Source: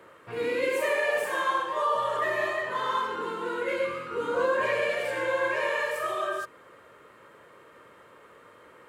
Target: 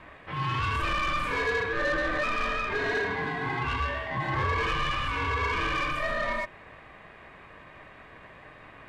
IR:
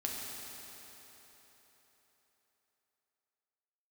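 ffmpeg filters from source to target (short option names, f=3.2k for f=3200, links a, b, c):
-filter_complex "[0:a]aemphasis=mode=reproduction:type=50kf,asplit=2[a][b];[b]highpass=f=720:p=1,volume=18dB,asoftclip=type=tanh:threshold=-15dB[c];[a][c]amix=inputs=2:normalize=0,lowpass=f=4.2k:p=1,volume=-6dB,aeval=exprs='val(0)*sin(2*PI*610*n/s)':c=same,volume=-2.5dB"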